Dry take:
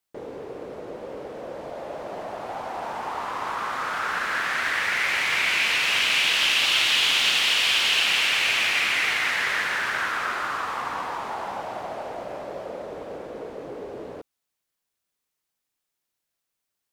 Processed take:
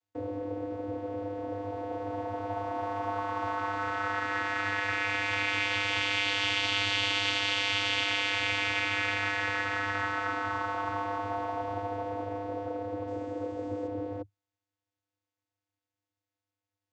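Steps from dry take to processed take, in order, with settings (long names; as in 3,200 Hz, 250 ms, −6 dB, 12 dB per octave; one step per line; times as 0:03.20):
0:13.07–0:13.87: linear delta modulator 64 kbit/s, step −43.5 dBFS
channel vocoder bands 16, square 100 Hz
level −5 dB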